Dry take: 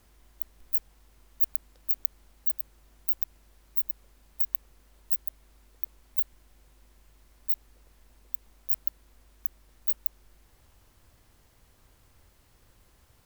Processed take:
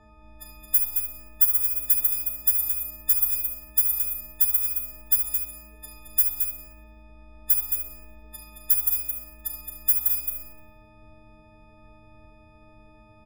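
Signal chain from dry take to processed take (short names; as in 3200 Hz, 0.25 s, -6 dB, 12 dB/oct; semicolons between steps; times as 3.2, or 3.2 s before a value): frequency quantiser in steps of 6 st; low-pass opened by the level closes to 1200 Hz, open at -9.5 dBFS; on a send: echo 0.219 s -6.5 dB; on the sum: Schroeder reverb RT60 0.54 s, combs from 29 ms, DRR 3 dB; gain +8 dB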